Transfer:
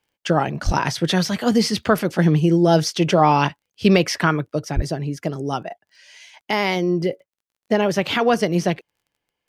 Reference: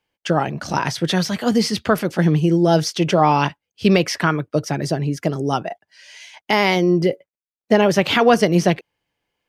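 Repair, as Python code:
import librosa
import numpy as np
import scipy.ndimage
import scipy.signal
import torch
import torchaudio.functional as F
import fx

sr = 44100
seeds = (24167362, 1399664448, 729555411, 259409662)

y = fx.fix_declick_ar(x, sr, threshold=6.5)
y = fx.highpass(y, sr, hz=140.0, slope=24, at=(0.65, 0.77), fade=0.02)
y = fx.highpass(y, sr, hz=140.0, slope=24, at=(4.75, 4.87), fade=0.02)
y = fx.gain(y, sr, db=fx.steps((0.0, 0.0), (4.48, 4.0)))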